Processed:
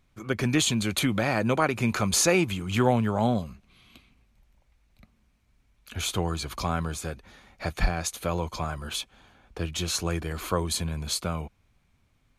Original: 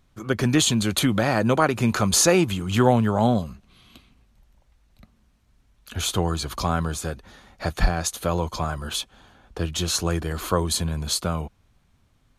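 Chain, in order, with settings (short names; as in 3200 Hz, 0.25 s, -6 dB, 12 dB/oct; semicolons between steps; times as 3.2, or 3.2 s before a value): bell 2300 Hz +7 dB 0.32 oct; gain -4.5 dB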